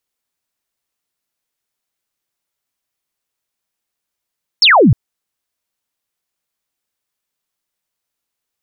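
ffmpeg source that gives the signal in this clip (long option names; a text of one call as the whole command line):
ffmpeg -f lavfi -i "aevalsrc='0.562*clip(t/0.002,0,1)*clip((0.31-t)/0.002,0,1)*sin(2*PI*5600*0.31/log(99/5600)*(exp(log(99/5600)*t/0.31)-1))':duration=0.31:sample_rate=44100" out.wav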